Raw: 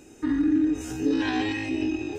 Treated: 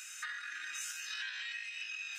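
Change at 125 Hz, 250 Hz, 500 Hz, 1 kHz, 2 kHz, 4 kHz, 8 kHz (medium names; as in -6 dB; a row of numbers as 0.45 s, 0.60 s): under -40 dB, under -40 dB, under -40 dB, -15.5 dB, -3.5 dB, -3.5 dB, +2.0 dB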